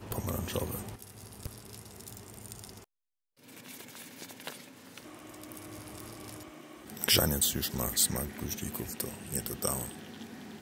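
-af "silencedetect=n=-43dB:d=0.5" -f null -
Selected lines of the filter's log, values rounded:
silence_start: 2.83
silence_end: 3.48 | silence_duration: 0.65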